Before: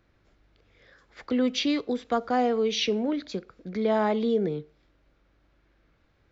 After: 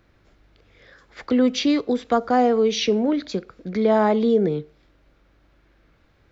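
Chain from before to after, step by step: dynamic EQ 3000 Hz, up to -5 dB, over -43 dBFS, Q 0.95; gain +6.5 dB

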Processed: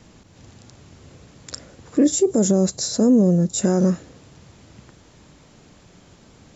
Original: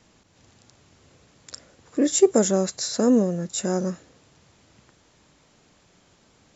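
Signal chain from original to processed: 2.04–3.62 bell 1900 Hz -9.5 dB 2.1 oct; limiter -18 dBFS, peak gain reduction 11 dB; low shelf 380 Hz +7.5 dB; gain +5.5 dB

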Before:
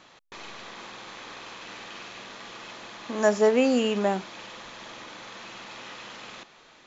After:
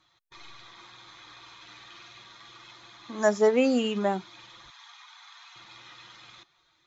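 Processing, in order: per-bin expansion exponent 1.5; 4.7–5.56 brick-wall FIR high-pass 700 Hz

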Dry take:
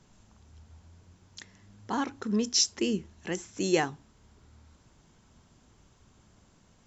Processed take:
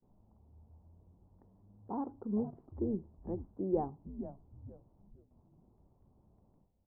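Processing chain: steep low-pass 920 Hz 36 dB/oct; gate with hold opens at -53 dBFS; frequency-shifting echo 0.461 s, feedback 38%, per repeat -130 Hz, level -10.5 dB; gain -6 dB

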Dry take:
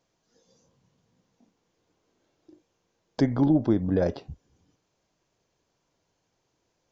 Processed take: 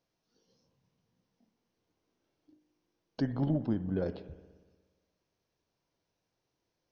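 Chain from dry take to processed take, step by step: spring tank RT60 1.4 s, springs 59 ms, chirp 75 ms, DRR 13 dB; formant shift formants -2 st; gain -8.5 dB

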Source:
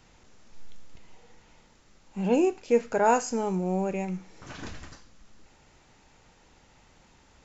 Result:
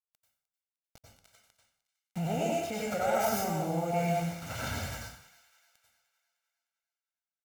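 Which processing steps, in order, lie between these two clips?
tracing distortion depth 0.18 ms; HPF 86 Hz 12 dB/oct; formant-preserving pitch shift -2 st; requantised 8-bit, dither none; vibrato 3 Hz 30 cents; thin delay 0.304 s, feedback 48%, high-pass 1500 Hz, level -18 dB; limiter -27 dBFS, peak gain reduction 17 dB; comb 1.4 ms, depth 63%; plate-style reverb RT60 0.62 s, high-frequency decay 0.85×, pre-delay 80 ms, DRR -3.5 dB

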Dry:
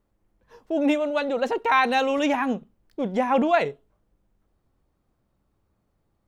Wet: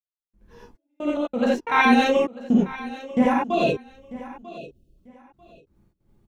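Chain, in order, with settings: spectral delete 3.53–4.97, 700–2500 Hz; resonant low shelf 400 Hz +7.5 dB, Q 1.5; step gate "..xx..x.x.xxx" 90 bpm -60 dB; feedback echo 0.943 s, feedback 22%, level -17 dB; non-linear reverb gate 0.11 s rising, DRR -7.5 dB; gain -4 dB

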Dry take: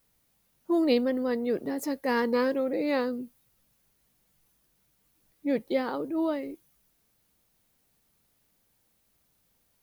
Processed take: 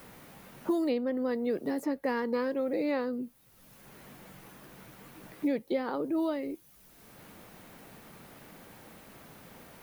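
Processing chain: three-band squash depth 100%; gain -3.5 dB

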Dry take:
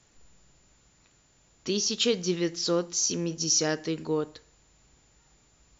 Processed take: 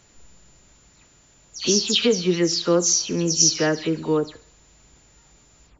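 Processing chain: spectral delay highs early, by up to 0.142 s; thin delay 68 ms, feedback 56%, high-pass 2000 Hz, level -19 dB; gain +7.5 dB

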